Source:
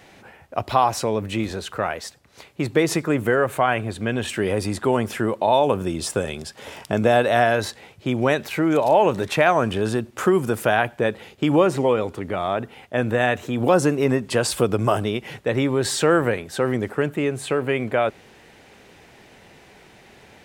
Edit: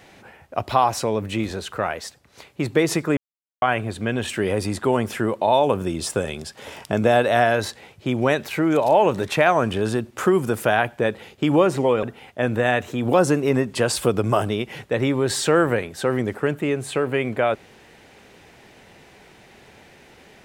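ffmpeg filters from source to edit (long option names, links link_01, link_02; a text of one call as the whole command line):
ffmpeg -i in.wav -filter_complex "[0:a]asplit=4[link_01][link_02][link_03][link_04];[link_01]atrim=end=3.17,asetpts=PTS-STARTPTS,afade=type=out:start_time=3.166:duration=0.004:curve=hsin[link_05];[link_02]atrim=start=3.17:end=3.62,asetpts=PTS-STARTPTS,volume=0[link_06];[link_03]atrim=start=3.62:end=12.032,asetpts=PTS-STARTPTS,afade=type=in:duration=0.004:curve=hsin[link_07];[link_04]atrim=start=12.578[link_08];[link_05][link_06][link_07]concat=n=3:v=0:a=1[link_09];[link_09][link_08]acrossfade=duration=0.004:curve1=hsin:curve2=hsin" out.wav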